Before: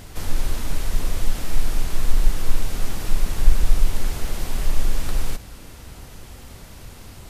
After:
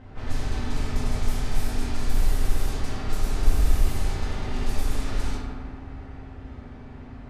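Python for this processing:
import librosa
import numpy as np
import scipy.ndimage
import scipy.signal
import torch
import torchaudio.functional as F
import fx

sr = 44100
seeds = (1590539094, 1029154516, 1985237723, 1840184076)

y = fx.rev_fdn(x, sr, rt60_s=2.4, lf_ratio=1.05, hf_ratio=0.45, size_ms=23.0, drr_db=-6.5)
y = fx.env_lowpass(y, sr, base_hz=1600.0, full_db=-6.5)
y = y * 10.0 ** (-8.0 / 20.0)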